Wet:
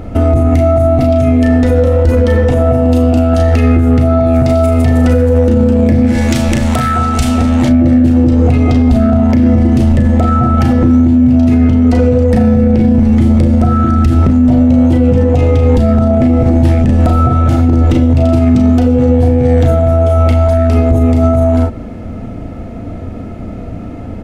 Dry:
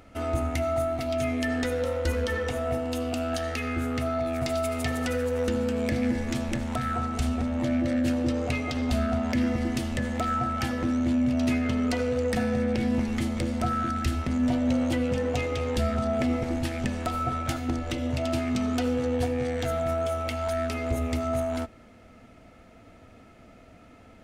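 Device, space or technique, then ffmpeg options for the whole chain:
mastering chain: -filter_complex "[0:a]asplit=3[a][b][c];[a]afade=t=out:st=6.06:d=0.02[d];[b]tiltshelf=f=1.2k:g=-9.5,afade=t=in:st=6.06:d=0.02,afade=t=out:st=7.68:d=0.02[e];[c]afade=t=in:st=7.68:d=0.02[f];[d][e][f]amix=inputs=3:normalize=0,equalizer=f=830:t=o:w=0.77:g=2,aecho=1:1:35|45:0.501|0.299,acompressor=threshold=-30dB:ratio=2,asoftclip=type=tanh:threshold=-14dB,tiltshelf=f=670:g=9.5,alimiter=level_in=21dB:limit=-1dB:release=50:level=0:latency=1,volume=-1dB"

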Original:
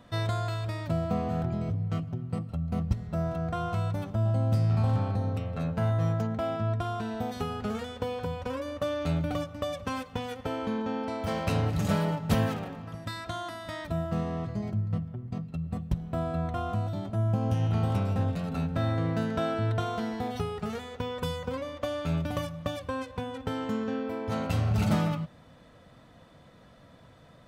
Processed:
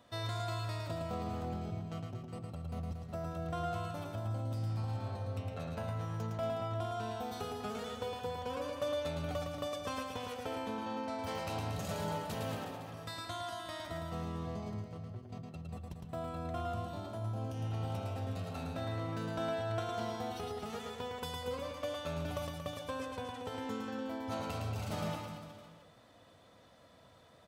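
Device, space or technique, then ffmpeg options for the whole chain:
car stereo with a boomy subwoofer: -af "lowshelf=f=120:t=q:w=1.5:g=6,equalizer=f=1.7k:t=o:w=1.6:g=-5,alimiter=limit=-19.5dB:level=0:latency=1:release=204,highpass=f=520:p=1,aecho=1:1:110|231|364.1|510.5|671.6:0.631|0.398|0.251|0.158|0.1,volume=-2.5dB"

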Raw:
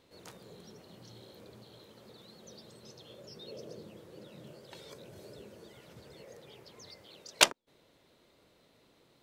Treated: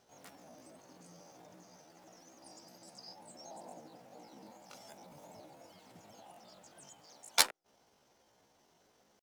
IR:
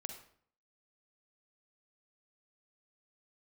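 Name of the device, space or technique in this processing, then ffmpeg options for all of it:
chipmunk voice: -filter_complex "[0:a]asetrate=66075,aresample=44100,atempo=0.66742,asettb=1/sr,asplit=3[a][b][c];[a]atrim=end=2.424[d];[b]atrim=start=2.42:end=3.15,asetpts=PTS-STARTPTS,afade=t=in:d=0.004:c=qsin,afade=t=out:st=0.726:d=0.004:c=qsin,equalizer=f=4.9k:w=6:g=13[e];[c]atrim=start=3.146[f];[d][e]acrossfade=d=0.004:c1=hsin:c2=qsin[g];[g][f]acrossfade=d=0.004:c1=qsin:c2=hsin,volume=-3.5dB"

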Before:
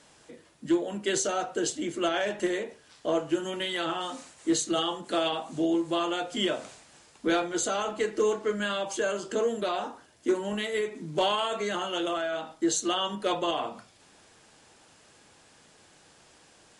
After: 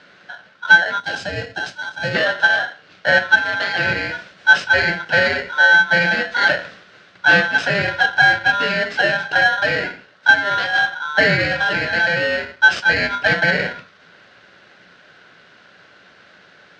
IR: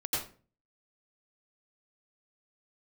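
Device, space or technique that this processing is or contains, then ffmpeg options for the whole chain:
ring modulator pedal into a guitar cabinet: -filter_complex "[0:a]aeval=exprs='val(0)*sgn(sin(2*PI*1200*n/s))':c=same,highpass=84,equalizer=f=110:t=q:w=4:g=4,equalizer=f=180:t=q:w=4:g=9,equalizer=f=570:t=q:w=4:g=5,equalizer=f=920:t=q:w=4:g=-6,equalizer=f=1.5k:t=q:w=4:g=10,lowpass=f=4.3k:w=0.5412,lowpass=f=4.3k:w=1.3066,bandreject=f=50:t=h:w=6,bandreject=f=100:t=h:w=6,asettb=1/sr,asplit=3[a][b][c];[a]atrim=end=1.004[d];[b]atrim=start=1:end=2.15,asetpts=PTS-STARTPTS,afade=t=in:d=0.004:c=qsin,afade=t=out:st=1.146:d=0.004:c=qsin,equalizer=f=1.5k:w=0.4:g=-10.5[e];[c]atrim=start=2.146[f];[d][e]acrossfade=d=0.004:c1=hsin:c2=qsin[g];[g][f]acrossfade=d=0.004:c1=qsin:c2=hsin,volume=8.5dB"

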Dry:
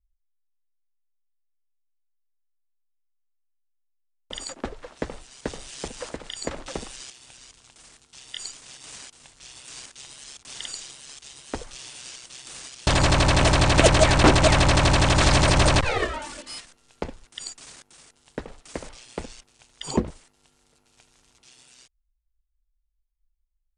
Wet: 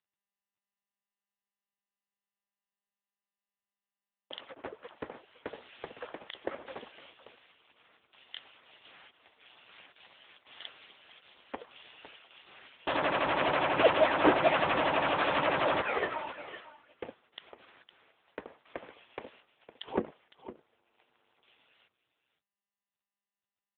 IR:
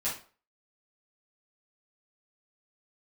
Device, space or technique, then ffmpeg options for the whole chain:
satellite phone: -af "highpass=340,lowpass=3.2k,aecho=1:1:509:0.188,volume=-2dB" -ar 8000 -c:a libopencore_amrnb -b:a 6700

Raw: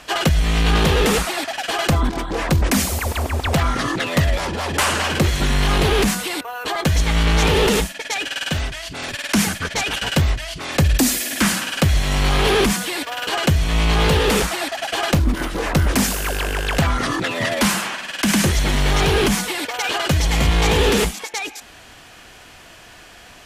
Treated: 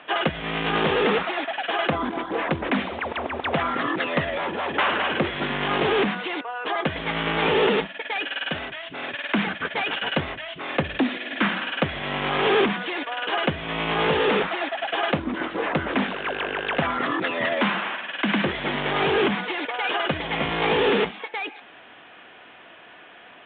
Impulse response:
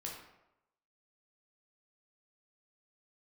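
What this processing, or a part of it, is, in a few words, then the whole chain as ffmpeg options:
telephone: -af "highpass=250,lowpass=3.2k,volume=-1.5dB" -ar 8000 -c:a pcm_mulaw

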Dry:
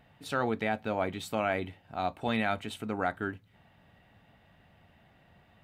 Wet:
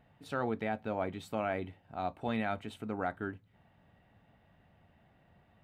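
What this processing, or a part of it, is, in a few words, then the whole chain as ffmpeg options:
behind a face mask: -af "highshelf=f=2k:g=-8,volume=-3dB"

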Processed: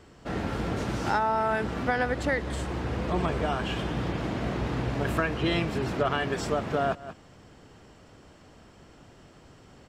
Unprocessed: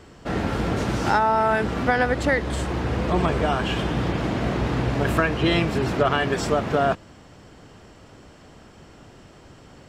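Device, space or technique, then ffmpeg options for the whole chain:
ducked delay: -filter_complex "[0:a]asplit=3[a][b][c];[b]adelay=182,volume=-7.5dB[d];[c]apad=whole_len=444116[e];[d][e]sidechaincompress=threshold=-38dB:ratio=8:attack=8.1:release=157[f];[a][f]amix=inputs=2:normalize=0,volume=-6dB"

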